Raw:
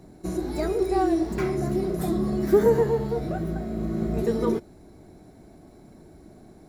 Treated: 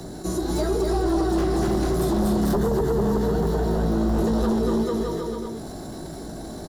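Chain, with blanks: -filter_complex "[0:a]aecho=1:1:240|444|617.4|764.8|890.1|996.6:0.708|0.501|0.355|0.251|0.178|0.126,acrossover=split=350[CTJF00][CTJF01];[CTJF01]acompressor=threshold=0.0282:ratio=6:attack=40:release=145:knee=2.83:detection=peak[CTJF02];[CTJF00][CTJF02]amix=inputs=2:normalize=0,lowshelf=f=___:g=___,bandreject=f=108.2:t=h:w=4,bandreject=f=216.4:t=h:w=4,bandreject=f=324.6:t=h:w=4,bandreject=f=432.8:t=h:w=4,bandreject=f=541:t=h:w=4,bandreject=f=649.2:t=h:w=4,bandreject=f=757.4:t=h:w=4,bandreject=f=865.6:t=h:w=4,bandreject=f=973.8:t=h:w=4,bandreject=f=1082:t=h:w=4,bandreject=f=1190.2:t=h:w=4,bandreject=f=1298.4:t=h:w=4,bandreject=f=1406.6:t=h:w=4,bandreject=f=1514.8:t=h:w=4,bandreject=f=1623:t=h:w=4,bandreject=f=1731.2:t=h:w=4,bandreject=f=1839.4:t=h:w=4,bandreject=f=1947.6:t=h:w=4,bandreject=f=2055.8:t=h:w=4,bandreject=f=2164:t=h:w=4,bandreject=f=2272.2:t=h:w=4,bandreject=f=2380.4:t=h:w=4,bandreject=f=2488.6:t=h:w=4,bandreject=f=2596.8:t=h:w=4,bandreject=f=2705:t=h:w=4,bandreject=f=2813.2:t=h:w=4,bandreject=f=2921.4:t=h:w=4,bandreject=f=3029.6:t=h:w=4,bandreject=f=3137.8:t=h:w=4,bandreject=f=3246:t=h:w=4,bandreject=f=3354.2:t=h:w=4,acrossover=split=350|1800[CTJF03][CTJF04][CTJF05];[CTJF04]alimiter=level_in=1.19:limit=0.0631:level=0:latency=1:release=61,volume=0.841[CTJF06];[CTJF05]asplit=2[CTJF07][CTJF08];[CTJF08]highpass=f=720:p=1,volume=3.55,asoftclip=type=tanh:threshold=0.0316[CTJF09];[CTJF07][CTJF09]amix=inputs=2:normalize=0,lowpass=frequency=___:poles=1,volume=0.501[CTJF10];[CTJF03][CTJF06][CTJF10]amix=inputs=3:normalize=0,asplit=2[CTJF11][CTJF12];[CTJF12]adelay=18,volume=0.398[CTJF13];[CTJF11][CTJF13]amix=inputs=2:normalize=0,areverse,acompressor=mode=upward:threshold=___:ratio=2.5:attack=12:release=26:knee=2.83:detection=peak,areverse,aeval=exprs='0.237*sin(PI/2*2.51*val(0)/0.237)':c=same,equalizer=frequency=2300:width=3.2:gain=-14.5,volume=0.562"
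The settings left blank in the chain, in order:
430, -4, 6800, 0.0141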